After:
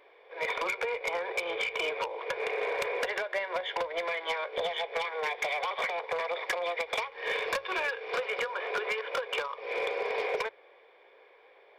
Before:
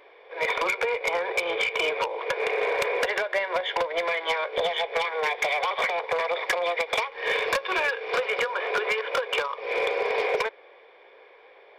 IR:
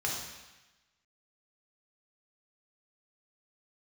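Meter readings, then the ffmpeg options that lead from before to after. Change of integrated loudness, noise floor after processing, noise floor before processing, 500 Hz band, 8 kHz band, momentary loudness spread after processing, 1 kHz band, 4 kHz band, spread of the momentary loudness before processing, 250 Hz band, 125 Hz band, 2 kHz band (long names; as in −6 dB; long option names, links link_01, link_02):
−6.0 dB, −59 dBFS, −53 dBFS, −6.0 dB, −6.0 dB, 3 LU, −6.0 dB, −6.0 dB, 3 LU, −6.0 dB, can't be measured, −6.0 dB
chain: -af "bandreject=frequency=60:width_type=h:width=6,bandreject=frequency=120:width_type=h:width=6,volume=-6dB"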